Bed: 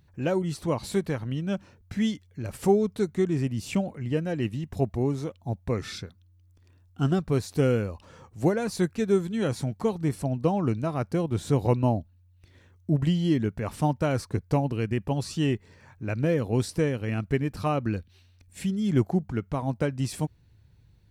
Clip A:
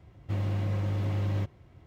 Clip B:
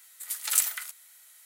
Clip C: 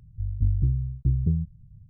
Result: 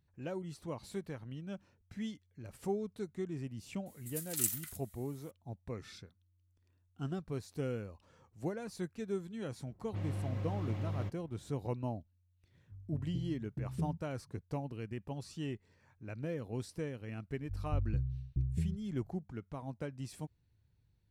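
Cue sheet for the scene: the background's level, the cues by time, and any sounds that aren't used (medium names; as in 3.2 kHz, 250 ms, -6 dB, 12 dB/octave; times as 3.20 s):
bed -14.5 dB
3.86 s: add B -18 dB + treble shelf 4.1 kHz +10.5 dB
9.64 s: add A -8.5 dB + level-controlled noise filter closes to 620 Hz, open at -25.5 dBFS
12.52 s: add C -4 dB + high-pass 240 Hz
17.31 s: add C -11 dB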